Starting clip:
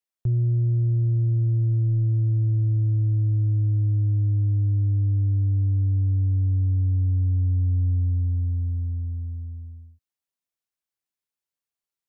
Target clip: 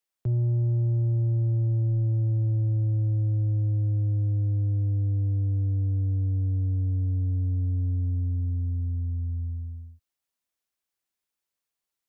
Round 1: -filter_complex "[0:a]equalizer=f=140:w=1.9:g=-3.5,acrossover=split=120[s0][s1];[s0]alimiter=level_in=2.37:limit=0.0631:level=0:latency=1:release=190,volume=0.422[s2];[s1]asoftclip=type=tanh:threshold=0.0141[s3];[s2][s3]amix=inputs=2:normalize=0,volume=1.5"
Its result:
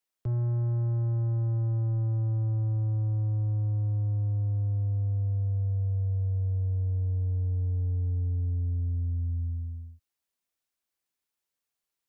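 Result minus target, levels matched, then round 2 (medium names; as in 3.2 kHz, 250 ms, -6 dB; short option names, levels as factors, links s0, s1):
saturation: distortion +12 dB
-filter_complex "[0:a]equalizer=f=140:w=1.9:g=-3.5,acrossover=split=120[s0][s1];[s0]alimiter=level_in=2.37:limit=0.0631:level=0:latency=1:release=190,volume=0.422[s2];[s1]asoftclip=type=tanh:threshold=0.0473[s3];[s2][s3]amix=inputs=2:normalize=0,volume=1.5"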